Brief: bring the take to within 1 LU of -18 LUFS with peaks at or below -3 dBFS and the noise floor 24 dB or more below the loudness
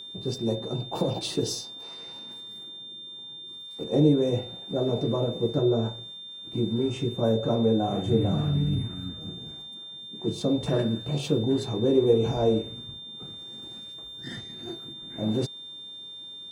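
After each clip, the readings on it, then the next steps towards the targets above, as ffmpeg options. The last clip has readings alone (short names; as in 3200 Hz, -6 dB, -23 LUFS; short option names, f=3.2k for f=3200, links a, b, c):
steady tone 3600 Hz; tone level -39 dBFS; loudness -27.0 LUFS; peak -9.0 dBFS; loudness target -18.0 LUFS
-> -af "bandreject=f=3.6k:w=30"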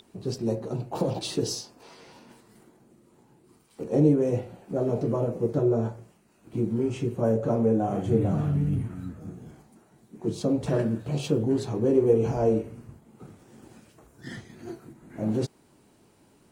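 steady tone none; loudness -26.5 LUFS; peak -9.5 dBFS; loudness target -18.0 LUFS
-> -af "volume=8.5dB,alimiter=limit=-3dB:level=0:latency=1"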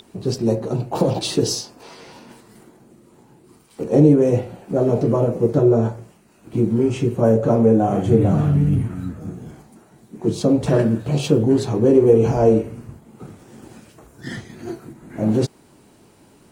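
loudness -18.5 LUFS; peak -3.0 dBFS; noise floor -52 dBFS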